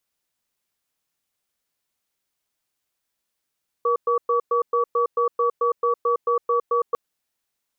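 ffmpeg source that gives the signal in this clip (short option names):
-f lavfi -i "aevalsrc='0.1*(sin(2*PI*476*t)+sin(2*PI*1140*t))*clip(min(mod(t,0.22),0.11-mod(t,0.22))/0.005,0,1)':d=3.1:s=44100"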